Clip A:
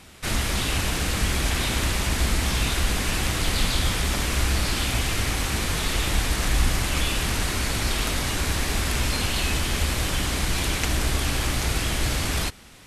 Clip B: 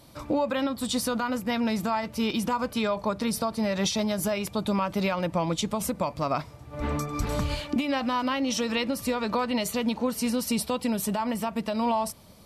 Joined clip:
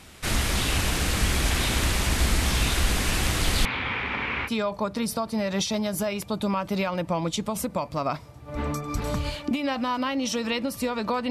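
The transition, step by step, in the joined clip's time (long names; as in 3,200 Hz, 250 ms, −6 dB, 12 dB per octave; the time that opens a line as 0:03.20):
clip A
0:03.65–0:04.50: loudspeaker in its box 160–2,700 Hz, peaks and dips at 170 Hz −9 dB, 330 Hz −8 dB, 640 Hz −9 dB, 920 Hz +4 dB, 2,300 Hz +7 dB
0:04.47: continue with clip B from 0:02.72, crossfade 0.06 s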